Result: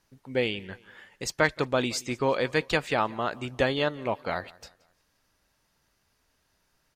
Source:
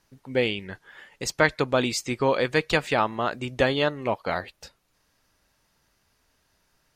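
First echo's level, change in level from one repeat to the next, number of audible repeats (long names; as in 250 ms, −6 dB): −23.0 dB, −7.5 dB, 2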